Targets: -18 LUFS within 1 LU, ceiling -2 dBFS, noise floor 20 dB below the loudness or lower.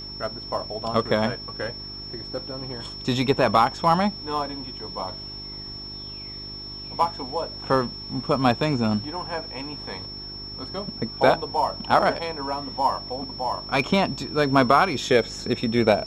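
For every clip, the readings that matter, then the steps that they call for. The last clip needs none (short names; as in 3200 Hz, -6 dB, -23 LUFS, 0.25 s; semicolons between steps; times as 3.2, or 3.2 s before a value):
hum 50 Hz; harmonics up to 400 Hz; hum level -40 dBFS; steady tone 5400 Hz; tone level -35 dBFS; loudness -25.0 LUFS; peak -3.5 dBFS; loudness target -18.0 LUFS
-> de-hum 50 Hz, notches 8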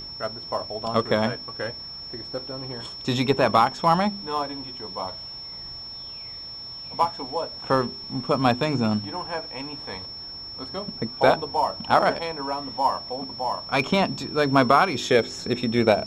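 hum none; steady tone 5400 Hz; tone level -35 dBFS
-> notch 5400 Hz, Q 30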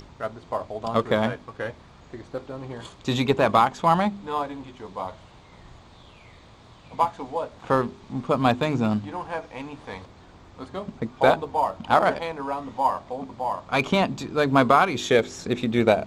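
steady tone none; loudness -24.5 LUFS; peak -3.5 dBFS; loudness target -18.0 LUFS
-> gain +6.5 dB; limiter -2 dBFS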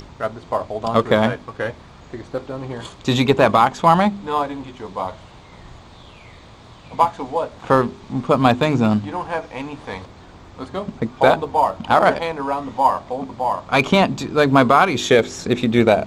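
loudness -18.5 LUFS; peak -2.0 dBFS; noise floor -44 dBFS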